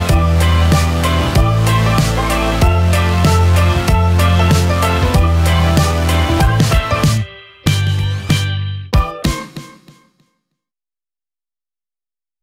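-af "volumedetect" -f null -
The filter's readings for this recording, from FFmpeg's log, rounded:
mean_volume: -13.6 dB
max_volume: -2.6 dB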